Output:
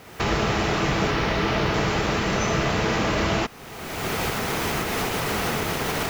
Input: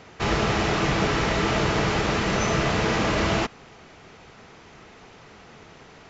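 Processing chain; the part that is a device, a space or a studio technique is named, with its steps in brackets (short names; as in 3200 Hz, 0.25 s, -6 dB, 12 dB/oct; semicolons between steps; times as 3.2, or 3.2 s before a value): 1.11–1.74 LPF 5800 Hz 24 dB/oct; cheap recorder with automatic gain (white noise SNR 32 dB; recorder AGC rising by 34 dB/s)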